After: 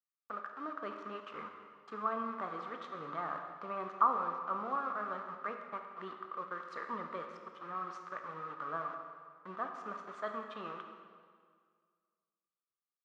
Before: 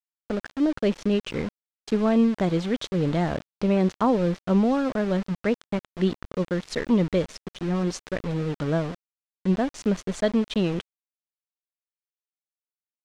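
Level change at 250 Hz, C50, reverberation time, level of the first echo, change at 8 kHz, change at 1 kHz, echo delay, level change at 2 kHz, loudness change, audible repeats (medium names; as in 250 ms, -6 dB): -26.5 dB, 5.0 dB, 1.9 s, no echo, under -25 dB, -2.0 dB, no echo, -9.5 dB, -14.0 dB, no echo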